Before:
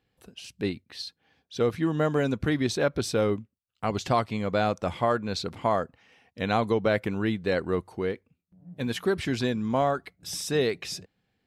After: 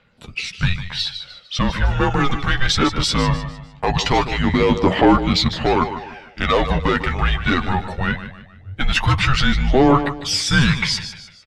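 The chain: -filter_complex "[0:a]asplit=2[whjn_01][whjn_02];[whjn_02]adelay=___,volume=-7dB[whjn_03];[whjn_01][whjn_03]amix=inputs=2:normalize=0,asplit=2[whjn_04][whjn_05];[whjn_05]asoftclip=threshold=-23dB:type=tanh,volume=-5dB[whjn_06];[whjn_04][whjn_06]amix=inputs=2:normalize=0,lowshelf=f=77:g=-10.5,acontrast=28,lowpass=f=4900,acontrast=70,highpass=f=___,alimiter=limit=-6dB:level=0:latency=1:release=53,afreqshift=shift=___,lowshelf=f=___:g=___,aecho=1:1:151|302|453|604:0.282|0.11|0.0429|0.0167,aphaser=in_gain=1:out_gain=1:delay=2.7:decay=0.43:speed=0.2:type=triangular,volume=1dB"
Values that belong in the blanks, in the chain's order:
12, 47, -270, 320, -8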